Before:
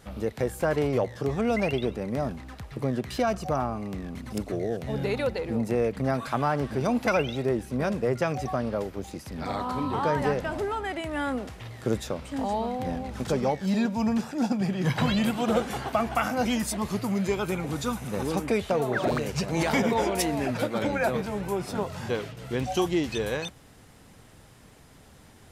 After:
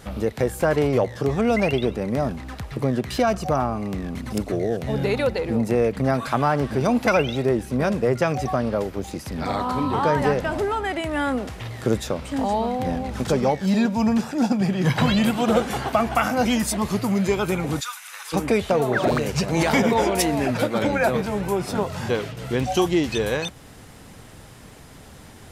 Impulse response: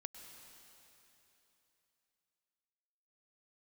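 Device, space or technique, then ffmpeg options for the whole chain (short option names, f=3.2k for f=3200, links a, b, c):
parallel compression: -filter_complex "[0:a]asplit=2[a][b];[b]acompressor=threshold=-39dB:ratio=6,volume=-5dB[c];[a][c]amix=inputs=2:normalize=0,asplit=3[d][e][f];[d]afade=t=out:st=17.79:d=0.02[g];[e]highpass=f=1.3k:w=0.5412,highpass=f=1.3k:w=1.3066,afade=t=in:st=17.79:d=0.02,afade=t=out:st=18.32:d=0.02[h];[f]afade=t=in:st=18.32:d=0.02[i];[g][h][i]amix=inputs=3:normalize=0,volume=4.5dB"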